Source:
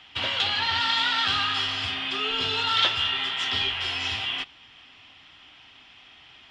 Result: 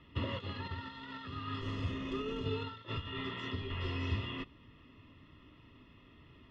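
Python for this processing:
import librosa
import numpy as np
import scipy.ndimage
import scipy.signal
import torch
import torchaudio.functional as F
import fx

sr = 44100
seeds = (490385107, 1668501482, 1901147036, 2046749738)

y = fx.over_compress(x, sr, threshold_db=-28.0, ratio=-0.5)
y = fx.tube_stage(y, sr, drive_db=21.0, bias=0.6, at=(1.61, 2.46))
y = np.convolve(y, np.full(57, 1.0 / 57))[:len(y)]
y = y * 10.0 ** (5.5 / 20.0)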